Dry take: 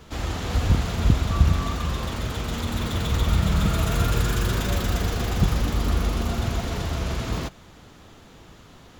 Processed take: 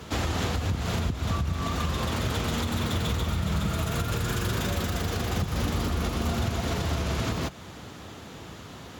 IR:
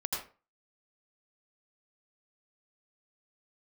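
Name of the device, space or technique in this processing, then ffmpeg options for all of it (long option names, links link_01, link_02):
podcast mastering chain: -af "highpass=frequency=64:width=0.5412,highpass=frequency=64:width=1.3066,acompressor=threshold=-28dB:ratio=4,alimiter=limit=-24dB:level=0:latency=1:release=201,volume=6.5dB" -ar 48000 -c:a libmp3lame -b:a 112k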